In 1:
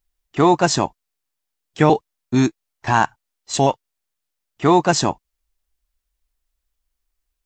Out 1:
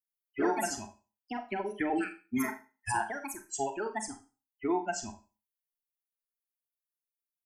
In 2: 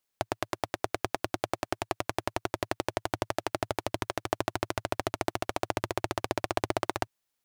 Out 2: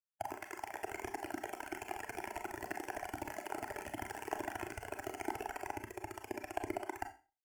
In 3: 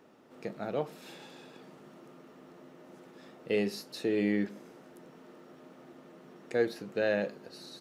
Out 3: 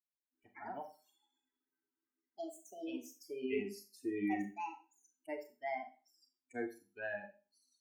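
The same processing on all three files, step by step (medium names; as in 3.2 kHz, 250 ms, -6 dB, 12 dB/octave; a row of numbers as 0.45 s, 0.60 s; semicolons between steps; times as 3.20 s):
expander on every frequency bin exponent 3; compression 2.5:1, threshold -28 dBFS; ever faster or slower copies 87 ms, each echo +4 st, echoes 2; static phaser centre 780 Hz, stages 8; Schroeder reverb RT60 0.33 s, combs from 29 ms, DRR 6.5 dB; trim -1.5 dB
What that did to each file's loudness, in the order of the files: -15.5 LU, -9.5 LU, -10.0 LU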